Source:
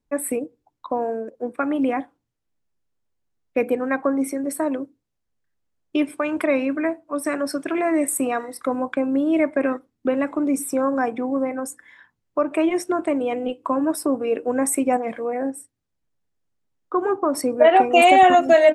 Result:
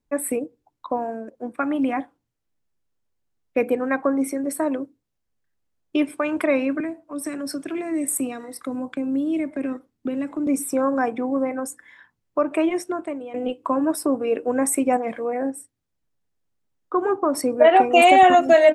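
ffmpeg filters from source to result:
ffmpeg -i in.wav -filter_complex "[0:a]asettb=1/sr,asplit=3[link_01][link_02][link_03];[link_01]atrim=end=0.964[link_04];[link_02]atrim=start=0.96:end=1.98,asetpts=PTS-STARTPTS,afade=type=in:duration=0.004:curve=qsin,afade=type=out:start_time=1.016:duration=0.004:curve=qsin,equalizer=frequency=460:width_type=o:width=0.38:gain=-8[link_05];[link_03]atrim=start=1.976[link_06];[link_04][link_05]acrossfade=duration=0.004:curve1=hsin:curve2=qsin[link_07];[link_07][link_06]acrossfade=duration=0.004:curve1=qsin:curve2=hsin,asettb=1/sr,asplit=3[link_08][link_09][link_10];[link_08]atrim=end=6.804[link_11];[link_09]atrim=start=6.8:end=10.47,asetpts=PTS-STARTPTS,afade=type=in:duration=0.004:curve=qsin,afade=type=out:start_time=3.666:duration=0.004:curve=qsin,acrossover=split=340|3000[link_12][link_13][link_14];[link_13]acompressor=threshold=-36dB:ratio=6:attack=3.2:release=140:knee=2.83:detection=peak[link_15];[link_12][link_15][link_14]amix=inputs=3:normalize=0[link_16];[link_10]atrim=start=10.466[link_17];[link_11][link_16]acrossfade=duration=0.004:curve1=hsin:curve2=qsin[link_18];[link_18][link_17]acrossfade=duration=0.004:curve1=qsin:curve2=hsin,asplit=2[link_19][link_20];[link_19]atrim=end=13.34,asetpts=PTS-STARTPTS,afade=type=out:start_time=12.54:duration=0.8:silence=0.177828[link_21];[link_20]atrim=start=13.34,asetpts=PTS-STARTPTS,afade=type=in:duration=0.004:curve=hsin:silence=0.177828[link_22];[link_21][link_22]concat=n=2:v=0:a=1" out.wav

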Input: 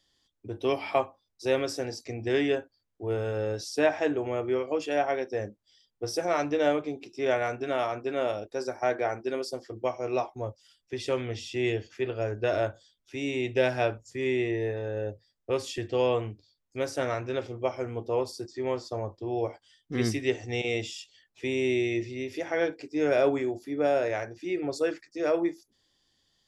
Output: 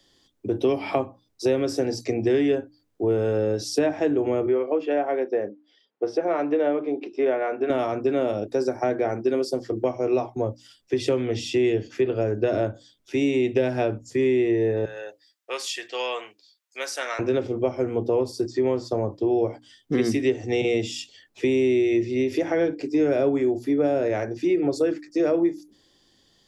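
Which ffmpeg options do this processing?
ffmpeg -i in.wav -filter_complex "[0:a]asettb=1/sr,asplit=3[link_01][link_02][link_03];[link_01]atrim=end=4.464[link_04];[link_02]atrim=start=4.46:end=7.7,asetpts=PTS-STARTPTS,afade=type=in:duration=0.004:curve=qsin,afade=type=out:start_time=3.236:duration=0.004:curve=qsin,highpass=370,lowpass=2400[link_05];[link_03]atrim=start=7.696[link_06];[link_04][link_05]acrossfade=duration=0.004:curve1=hsin:curve2=qsin[link_07];[link_07][link_06]acrossfade=duration=0.004:curve1=qsin:curve2=hsin,asettb=1/sr,asplit=3[link_08][link_09][link_10];[link_08]atrim=end=14.854[link_11];[link_09]atrim=start=14.85:end=17.19,asetpts=PTS-STARTPTS,afade=type=in:duration=0.004:curve=qsin,afade=type=out:start_time=2.336:duration=0.004:curve=qsin,highpass=1400[link_12];[link_10]atrim=start=17.186[link_13];[link_11][link_12]acrossfade=duration=0.004:curve1=hsin:curve2=qsin[link_14];[link_14][link_13]acrossfade=duration=0.004:curve1=qsin:curve2=hsin,equalizer=frequency=320:width_type=o:width=2.1:gain=7.5,bandreject=frequency=60:width_type=h:width=6,bandreject=frequency=120:width_type=h:width=6,bandreject=frequency=180:width_type=h:width=6,bandreject=frequency=240:width_type=h:width=6,bandreject=frequency=300:width_type=h:width=6,acrossover=split=110|290[link_15][link_16][link_17];[link_15]acompressor=threshold=-53dB:ratio=4[link_18];[link_16]acompressor=threshold=-35dB:ratio=4[link_19];[link_17]acompressor=threshold=-33dB:ratio=4[link_20];[link_18][link_19][link_20]amix=inputs=3:normalize=0,volume=8.5dB" out.wav

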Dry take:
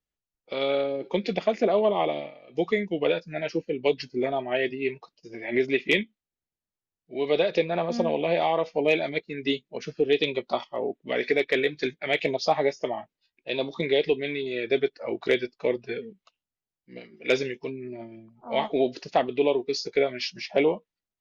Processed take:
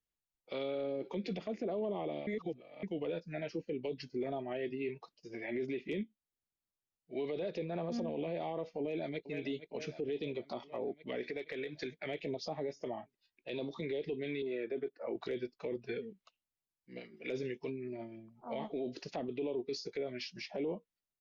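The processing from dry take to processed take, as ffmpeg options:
ffmpeg -i in.wav -filter_complex "[0:a]asplit=2[link_01][link_02];[link_02]afade=type=in:start_time=8.79:duration=0.01,afade=type=out:start_time=9.46:duration=0.01,aecho=0:1:460|920|1380|1840|2300|2760|3220|3680:0.141254|0.0988776|0.0692143|0.04845|0.033915|0.0237405|0.0166184|0.0116329[link_03];[link_01][link_03]amix=inputs=2:normalize=0,asettb=1/sr,asplit=3[link_04][link_05][link_06];[link_04]atrim=end=11.214[link_07];[link_05]atrim=start=11.21:end=12.05,asetpts=PTS-STARTPTS,afade=type=in:duration=0.004:curve=qsin,afade=type=out:start_time=0.836:duration=0.004:curve=qsin,acompressor=threshold=-29dB:ratio=6:attack=3.2:release=140:knee=1:detection=peak[link_08];[link_06]atrim=start=12.046[link_09];[link_07][link_08]acrossfade=duration=0.004:curve1=hsin:curve2=qsin[link_10];[link_10][link_09]acrossfade=duration=0.004:curve1=qsin:curve2=hsin,asettb=1/sr,asplit=3[link_11][link_12][link_13];[link_11]atrim=end=14.424[link_14];[link_12]atrim=start=14.42:end=15.16,asetpts=PTS-STARTPTS,afade=type=in:duration=0.004:curve=qsin,afade=type=out:start_time=0.736:duration=0.004:curve=qsin,acrossover=split=180 2100:gain=0.224 1 0.158[link_15][link_16][link_17];[link_15][link_16][link_17]amix=inputs=3:normalize=0[link_18];[link_13]atrim=start=15.156[link_19];[link_14][link_18]acrossfade=duration=0.004:curve1=hsin:curve2=qsin[link_20];[link_20][link_19]acrossfade=duration=0.004:curve1=qsin:curve2=hsin,asplit=3[link_21][link_22][link_23];[link_21]atrim=end=2.272[link_24];[link_22]atrim=start=2.268:end=2.832,asetpts=PTS-STARTPTS,areverse[link_25];[link_23]atrim=start=2.828[link_26];[link_24][link_25]acrossfade=duration=0.004:curve1=hsin:curve2=hsin[link_27];[link_27][link_26]acrossfade=duration=0.004:curve1=hsin:curve2=hsin,acrossover=split=480[link_28][link_29];[link_29]acompressor=threshold=-36dB:ratio=6[link_30];[link_28][link_30]amix=inputs=2:normalize=0,alimiter=level_in=0.5dB:limit=-24dB:level=0:latency=1:release=20,volume=-0.5dB,volume=-5dB" out.wav

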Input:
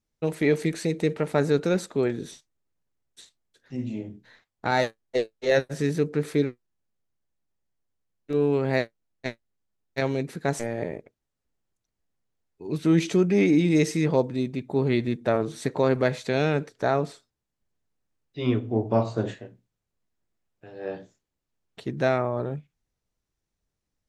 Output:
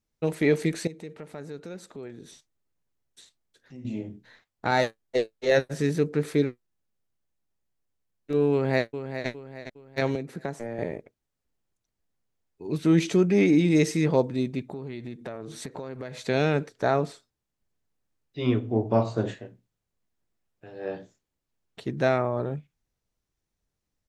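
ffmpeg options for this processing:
ffmpeg -i in.wav -filter_complex "[0:a]asettb=1/sr,asplit=3[link_01][link_02][link_03];[link_01]atrim=end=0.874[link_04];[link_02]atrim=start=0.87:end=3.85,asetpts=PTS-STARTPTS,afade=type=in:duration=0.004:curve=qsin,afade=type=out:start_time=2.976:duration=0.004:curve=qsin,acompressor=threshold=-49dB:ratio=2:attack=3.2:release=140:knee=1:detection=peak[link_05];[link_03]atrim=start=3.846[link_06];[link_04][link_05]acrossfade=duration=0.004:curve1=hsin:curve2=qsin[link_07];[link_07][link_06]acrossfade=duration=0.004:curve1=qsin:curve2=hsin,asplit=2[link_08][link_09];[link_09]afade=type=in:start_time=8.52:duration=0.01,afade=type=out:start_time=9.28:duration=0.01,aecho=0:1:410|820|1230|1640:0.334965|0.133986|0.0535945|0.0214378[link_10];[link_08][link_10]amix=inputs=2:normalize=0,asettb=1/sr,asplit=3[link_11][link_12][link_13];[link_11]atrim=end=10.154[link_14];[link_12]atrim=start=10.15:end=10.79,asetpts=PTS-STARTPTS,afade=type=in:duration=0.004:curve=qsin,afade=type=out:start_time=0.636:duration=0.004:curve=qsin,acrossover=split=140|1800[link_15][link_16][link_17];[link_15]acompressor=threshold=-47dB:ratio=4[link_18];[link_16]acompressor=threshold=-30dB:ratio=4[link_19];[link_17]acompressor=threshold=-52dB:ratio=4[link_20];[link_18][link_19][link_20]amix=inputs=3:normalize=0[link_21];[link_13]atrim=start=10.786[link_22];[link_14][link_21]acrossfade=duration=0.004:curve1=hsin:curve2=qsin[link_23];[link_23][link_22]acrossfade=duration=0.004:curve1=qsin:curve2=hsin,asettb=1/sr,asplit=3[link_24][link_25][link_26];[link_24]atrim=end=14.664[link_27];[link_25]atrim=start=14.66:end=16.21,asetpts=PTS-STARTPTS,afade=type=in:duration=0.004:curve=qsin,afade=type=out:start_time=1.546:duration=0.004:curve=qsin,acompressor=threshold=-33dB:ratio=6:attack=3.2:release=140:knee=1:detection=peak[link_28];[link_26]atrim=start=16.206[link_29];[link_27][link_28]acrossfade=duration=0.004:curve1=hsin:curve2=qsin[link_30];[link_30][link_29]acrossfade=duration=0.004:curve1=qsin:curve2=hsin" out.wav

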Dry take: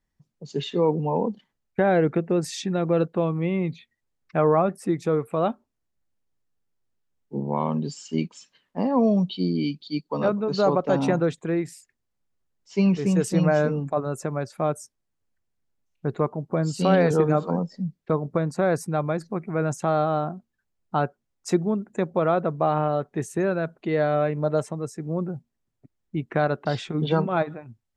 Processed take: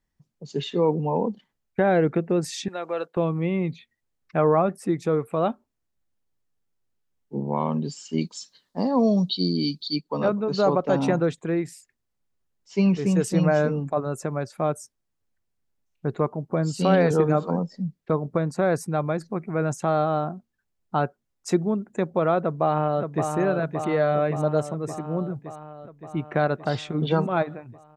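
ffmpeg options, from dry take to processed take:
ffmpeg -i in.wav -filter_complex "[0:a]asettb=1/sr,asplit=3[link_01][link_02][link_03];[link_01]atrim=end=2.684[link_04];[link_02]atrim=start=2.68:end=3.17,asetpts=PTS-STARTPTS,afade=type=in:duration=0.004:curve=qsin,afade=type=out:start_time=0.486:duration=0.004:curve=qsin,highpass=650[link_05];[link_03]atrim=start=3.166[link_06];[link_04][link_05]acrossfade=duration=0.004:curve1=hsin:curve2=qsin[link_07];[link_07][link_06]acrossfade=duration=0.004:curve1=qsin:curve2=hsin,asettb=1/sr,asplit=3[link_08][link_09][link_10];[link_08]atrim=end=8.214[link_11];[link_09]atrim=start=8.21:end=9.96,asetpts=PTS-STARTPTS,afade=type=in:duration=0.004:curve=qsin,afade=type=out:start_time=1.746:duration=0.004:curve=qsin,highshelf=frequency=3300:width_type=q:width=3:gain=6.5[link_12];[link_10]atrim=start=9.956[link_13];[link_11][link_12]acrossfade=duration=0.004:curve1=hsin:curve2=qsin[link_14];[link_14][link_13]acrossfade=duration=0.004:curve1=qsin:curve2=hsin,asplit=2[link_15][link_16];[link_16]afade=type=in:start_time=22.4:duration=0.01,afade=type=out:start_time=23.27:duration=0.01,aecho=0:1:570|1140|1710|2280|2850|3420|3990|4560|5130|5700|6270|6840:0.530884|0.371619|0.260133|0.182093|0.127465|0.0892257|0.062458|0.0437206|0.0306044|0.0214231|0.0149962|0.0104973[link_17];[link_15][link_17]amix=inputs=2:normalize=0" out.wav

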